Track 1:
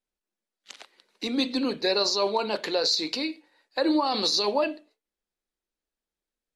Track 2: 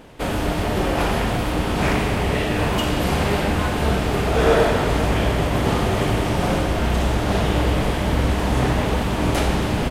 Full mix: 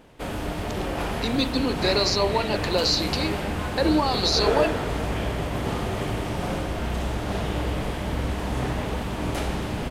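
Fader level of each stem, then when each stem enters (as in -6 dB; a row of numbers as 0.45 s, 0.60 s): +1.5 dB, -7.5 dB; 0.00 s, 0.00 s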